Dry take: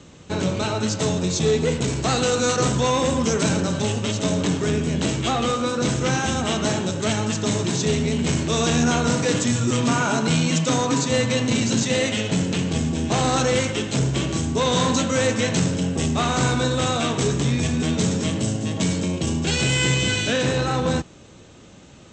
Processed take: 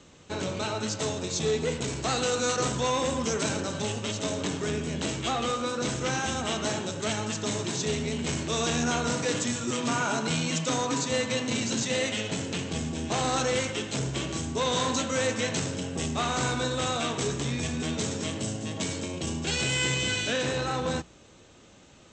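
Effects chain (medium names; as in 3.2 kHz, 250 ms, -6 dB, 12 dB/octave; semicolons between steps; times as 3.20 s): peaking EQ 140 Hz -5 dB 2.7 oct; hum notches 60/120/180 Hz; trim -5 dB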